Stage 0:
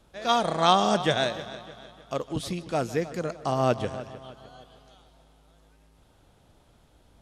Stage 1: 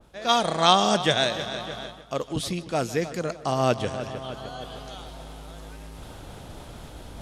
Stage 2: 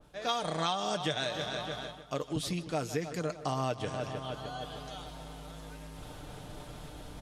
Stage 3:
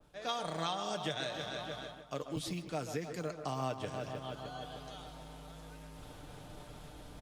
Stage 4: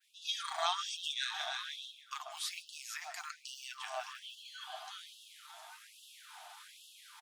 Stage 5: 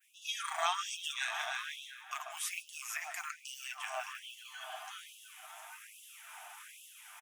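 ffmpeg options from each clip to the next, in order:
ffmpeg -i in.wav -af "areverse,acompressor=mode=upward:threshold=-26dB:ratio=2.5,areverse,adynamicequalizer=threshold=0.0158:dfrequency=2000:dqfactor=0.7:tfrequency=2000:tqfactor=0.7:attack=5:release=100:ratio=0.375:range=2.5:mode=boostabove:tftype=highshelf,volume=1dB" out.wav
ffmpeg -i in.wav -af "aecho=1:1:6.7:0.45,acompressor=threshold=-24dB:ratio=6,volume=-4.5dB" out.wav
ffmpeg -i in.wav -filter_complex "[0:a]acrossover=split=170|2400[link_01][link_02][link_03];[link_01]acrusher=samples=18:mix=1:aa=0.000001[link_04];[link_02]aecho=1:1:137:0.376[link_05];[link_04][link_05][link_03]amix=inputs=3:normalize=0,volume=-5dB" out.wav
ffmpeg -i in.wav -af "afftfilt=real='re*gte(b*sr/1024,610*pow(2700/610,0.5+0.5*sin(2*PI*1.2*pts/sr)))':imag='im*gte(b*sr/1024,610*pow(2700/610,0.5+0.5*sin(2*PI*1.2*pts/sr)))':win_size=1024:overlap=0.75,volume=4.5dB" out.wav
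ffmpeg -i in.wav -filter_complex "[0:a]crystalizer=i=6:c=0,firequalizer=gain_entry='entry(2500,0);entry(4200,-22);entry(5900,-11)':delay=0.05:min_phase=1,asplit=2[link_01][link_02];[link_02]adelay=699.7,volume=-12dB,highshelf=frequency=4000:gain=-15.7[link_03];[link_01][link_03]amix=inputs=2:normalize=0,volume=-1.5dB" out.wav

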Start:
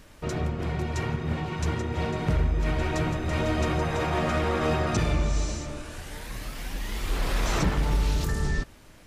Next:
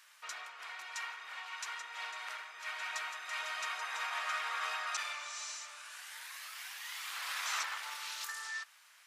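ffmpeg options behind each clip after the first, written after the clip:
ffmpeg -i in.wav -af "highpass=frequency=1100:width=0.5412,highpass=frequency=1100:width=1.3066,volume=-3.5dB" out.wav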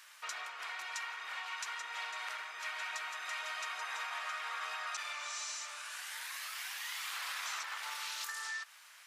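ffmpeg -i in.wav -af "acompressor=threshold=-42dB:ratio=6,volume=4.5dB" out.wav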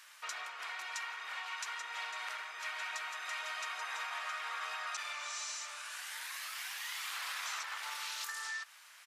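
ffmpeg -i in.wav -af "aresample=32000,aresample=44100" out.wav

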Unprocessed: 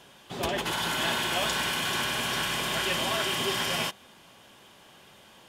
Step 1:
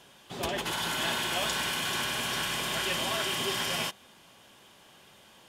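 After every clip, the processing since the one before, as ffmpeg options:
ffmpeg -i in.wav -af "equalizer=frequency=9100:width=0.37:gain=2.5,volume=-3dB" out.wav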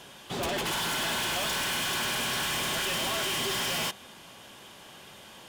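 ffmpeg -i in.wav -af "acontrast=83,volume=28.5dB,asoftclip=hard,volume=-28.5dB" out.wav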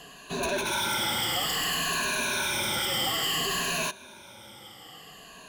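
ffmpeg -i in.wav -af "afftfilt=real='re*pow(10,16/40*sin(2*PI*(1.5*log(max(b,1)*sr/1024/100)/log(2)-(-0.58)*(pts-256)/sr)))':imag='im*pow(10,16/40*sin(2*PI*(1.5*log(max(b,1)*sr/1024/100)/log(2)-(-0.58)*(pts-256)/sr)))':win_size=1024:overlap=0.75,volume=-1.5dB" out.wav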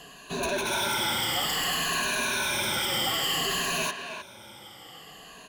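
ffmpeg -i in.wav -filter_complex "[0:a]asplit=2[link_01][link_02];[link_02]adelay=310,highpass=300,lowpass=3400,asoftclip=type=hard:threshold=-26.5dB,volume=-6dB[link_03];[link_01][link_03]amix=inputs=2:normalize=0" out.wav

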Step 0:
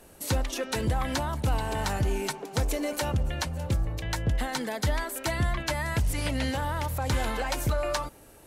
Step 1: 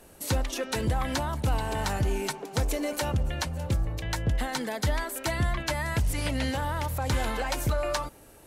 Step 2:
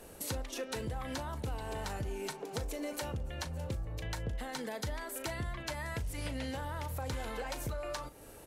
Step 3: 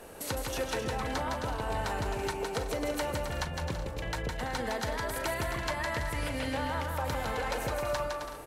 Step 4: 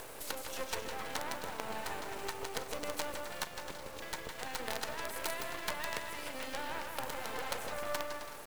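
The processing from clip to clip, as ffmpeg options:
ffmpeg -i in.wav -af anull out.wav
ffmpeg -i in.wav -filter_complex "[0:a]equalizer=frequency=470:width_type=o:width=0.33:gain=4.5,acompressor=threshold=-39dB:ratio=3,asplit=2[link_01][link_02];[link_02]adelay=38,volume=-13.5dB[link_03];[link_01][link_03]amix=inputs=2:normalize=0" out.wav
ffmpeg -i in.wav -filter_complex "[0:a]equalizer=frequency=1100:width=0.36:gain=7,asplit=2[link_01][link_02];[link_02]aecho=0:1:160|264|331.6|375.5|404.1:0.631|0.398|0.251|0.158|0.1[link_03];[link_01][link_03]amix=inputs=2:normalize=0" out.wav
ffmpeg -i in.wav -af "highpass=370,acompressor=mode=upward:threshold=-36dB:ratio=2.5,acrusher=bits=5:dc=4:mix=0:aa=0.000001,volume=-1.5dB" out.wav

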